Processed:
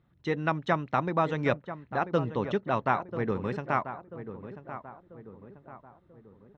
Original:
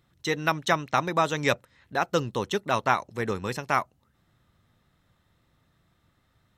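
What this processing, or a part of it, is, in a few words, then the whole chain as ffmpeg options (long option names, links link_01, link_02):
phone in a pocket: -filter_complex "[0:a]asettb=1/sr,asplit=3[link_01][link_02][link_03];[link_01]atrim=end=1.494[link_04];[link_02]atrim=start=1.49:end=3.31,asetpts=PTS-STARTPTS,afade=type=in:duration=0.004:curve=qsin,afade=type=out:start_time=1.816:duration=0.004:curve=qsin,lowpass=frequency=7100:width=0.5412,lowpass=frequency=7100:width=1.3066[link_05];[link_03]atrim=start=3.306[link_06];[link_04][link_05]acrossfade=duration=0.004:curve1=hsin:curve2=qsin[link_07];[link_07][link_06]acrossfade=duration=0.004:curve1=qsin:curve2=hsin,lowpass=3500,equalizer=frequency=190:width_type=o:width=1.3:gain=3,highshelf=frequency=2200:gain=-10,asplit=2[link_08][link_09];[link_09]adelay=989,lowpass=frequency=1500:poles=1,volume=-11dB,asplit=2[link_10][link_11];[link_11]adelay=989,lowpass=frequency=1500:poles=1,volume=0.47,asplit=2[link_12][link_13];[link_13]adelay=989,lowpass=frequency=1500:poles=1,volume=0.47,asplit=2[link_14][link_15];[link_15]adelay=989,lowpass=frequency=1500:poles=1,volume=0.47,asplit=2[link_16][link_17];[link_17]adelay=989,lowpass=frequency=1500:poles=1,volume=0.47[link_18];[link_08][link_10][link_12][link_14][link_16][link_18]amix=inputs=6:normalize=0,volume=-1.5dB"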